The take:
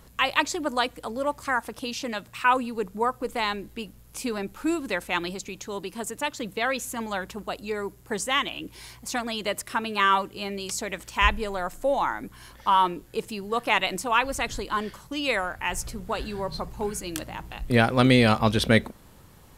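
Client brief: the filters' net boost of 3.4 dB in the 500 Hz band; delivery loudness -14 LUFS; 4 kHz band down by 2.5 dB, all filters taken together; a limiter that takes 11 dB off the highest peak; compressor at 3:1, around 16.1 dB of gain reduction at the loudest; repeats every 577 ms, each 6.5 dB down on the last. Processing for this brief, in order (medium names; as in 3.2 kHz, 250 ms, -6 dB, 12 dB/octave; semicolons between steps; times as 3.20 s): peaking EQ 500 Hz +4 dB; peaking EQ 4 kHz -3.5 dB; compression 3:1, threshold -36 dBFS; peak limiter -28 dBFS; feedback delay 577 ms, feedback 47%, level -6.5 dB; trim +24 dB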